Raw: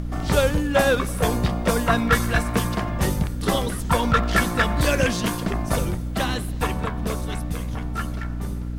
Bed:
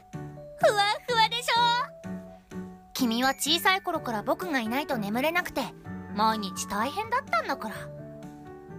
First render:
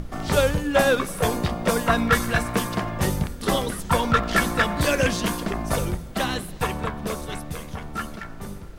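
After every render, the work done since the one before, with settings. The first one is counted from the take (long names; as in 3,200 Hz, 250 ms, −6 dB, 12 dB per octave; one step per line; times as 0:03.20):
mains-hum notches 60/120/180/240/300 Hz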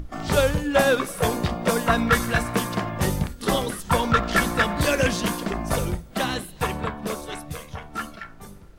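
noise reduction from a noise print 8 dB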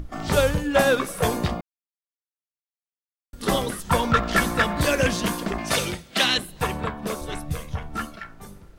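0:01.61–0:03.33: silence
0:05.58–0:06.38: meter weighting curve D
0:07.21–0:08.05: low-shelf EQ 180 Hz +9.5 dB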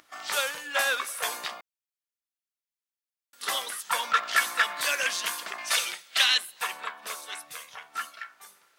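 high-pass filter 1,300 Hz 12 dB per octave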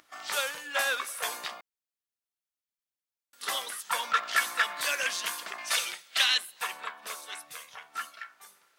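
level −2.5 dB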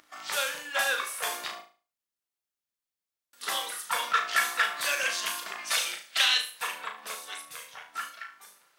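flutter between parallel walls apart 6.3 metres, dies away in 0.36 s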